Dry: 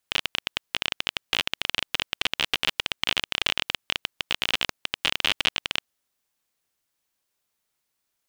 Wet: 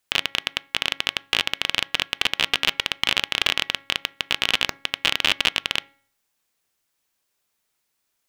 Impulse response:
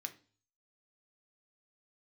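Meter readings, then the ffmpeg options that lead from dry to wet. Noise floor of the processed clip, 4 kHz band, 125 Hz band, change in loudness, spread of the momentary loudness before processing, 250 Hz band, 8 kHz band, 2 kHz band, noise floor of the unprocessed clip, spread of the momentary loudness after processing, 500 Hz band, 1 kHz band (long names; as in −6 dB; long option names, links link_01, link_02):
−75 dBFS, +4.0 dB, +2.5 dB, +4.0 dB, 5 LU, +3.0 dB, +4.0 dB, +4.5 dB, −79 dBFS, 5 LU, +3.5 dB, +3.5 dB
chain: -filter_complex "[0:a]bandreject=frequency=275.9:width_type=h:width=4,bandreject=frequency=551.8:width_type=h:width=4,bandreject=frequency=827.7:width_type=h:width=4,bandreject=frequency=1103.6:width_type=h:width=4,bandreject=frequency=1379.5:width_type=h:width=4,bandreject=frequency=1655.4:width_type=h:width=4,bandreject=frequency=1931.3:width_type=h:width=4,bandreject=frequency=2207.2:width_type=h:width=4,asplit=2[link_01][link_02];[1:a]atrim=start_sample=2205,highshelf=frequency=4100:gain=-6.5[link_03];[link_02][link_03]afir=irnorm=-1:irlink=0,volume=-9dB[link_04];[link_01][link_04]amix=inputs=2:normalize=0,volume=2.5dB"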